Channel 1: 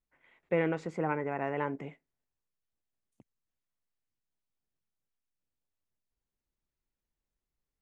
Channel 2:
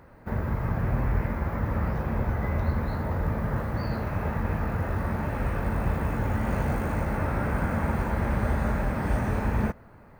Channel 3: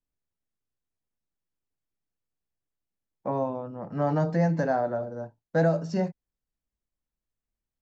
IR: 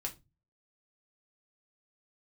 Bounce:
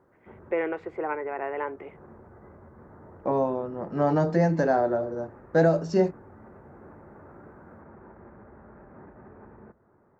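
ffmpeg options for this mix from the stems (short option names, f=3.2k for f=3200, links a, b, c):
-filter_complex "[0:a]acrossover=split=370 2800:gain=0.0891 1 0.0708[a][b][c];[a][b][c]amix=inputs=3:normalize=0,volume=3dB,asplit=2[d][e];[1:a]lowpass=f=1.6k:w=0.5412,lowpass=f=1.6k:w=1.3066,acompressor=threshold=-31dB:ratio=6,alimiter=level_in=5dB:limit=-24dB:level=0:latency=1:release=11,volume=-5dB,volume=-12.5dB,asplit=2[f][g];[g]volume=-10dB[h];[2:a]volume=2.5dB[i];[e]apad=whole_len=449725[j];[f][j]sidechaincompress=threshold=-39dB:ratio=8:attack=16:release=368[k];[3:a]atrim=start_sample=2205[l];[h][l]afir=irnorm=-1:irlink=0[m];[d][k][i][m]amix=inputs=4:normalize=0,highpass=f=160:p=1,equalizer=f=370:w=4.1:g=10.5"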